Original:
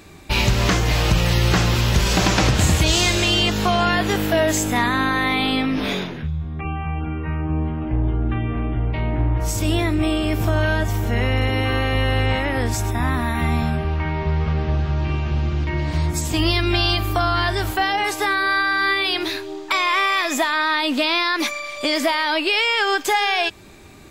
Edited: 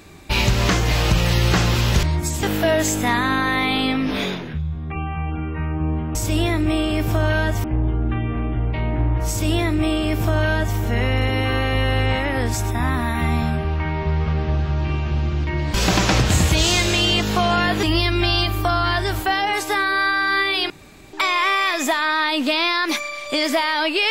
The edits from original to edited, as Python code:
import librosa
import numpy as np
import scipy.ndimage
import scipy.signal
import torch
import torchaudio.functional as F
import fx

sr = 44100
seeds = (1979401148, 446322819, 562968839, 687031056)

y = fx.edit(x, sr, fx.swap(start_s=2.03, length_s=2.09, other_s=15.94, other_length_s=0.4),
    fx.duplicate(start_s=9.48, length_s=1.49, to_s=7.84),
    fx.room_tone_fill(start_s=19.21, length_s=0.43), tone=tone)